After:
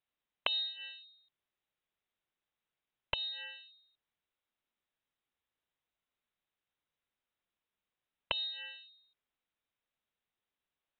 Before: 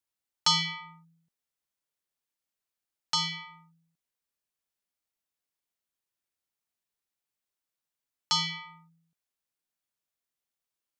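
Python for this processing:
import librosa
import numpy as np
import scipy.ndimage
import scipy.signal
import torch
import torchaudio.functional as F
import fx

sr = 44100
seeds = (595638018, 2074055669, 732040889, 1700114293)

y = fx.env_lowpass_down(x, sr, base_hz=400.0, full_db=-28.0)
y = fx.freq_invert(y, sr, carrier_hz=3900)
y = y * librosa.db_to_amplitude(2.5)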